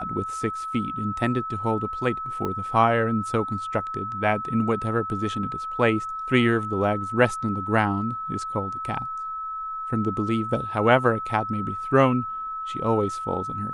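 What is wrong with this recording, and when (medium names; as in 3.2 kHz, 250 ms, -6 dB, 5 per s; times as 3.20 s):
whine 1.3 kHz -29 dBFS
2.45 s: pop -16 dBFS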